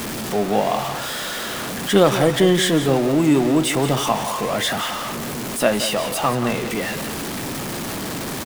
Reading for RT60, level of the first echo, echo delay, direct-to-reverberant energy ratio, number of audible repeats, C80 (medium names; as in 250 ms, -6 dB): no reverb, -11.0 dB, 177 ms, no reverb, 1, no reverb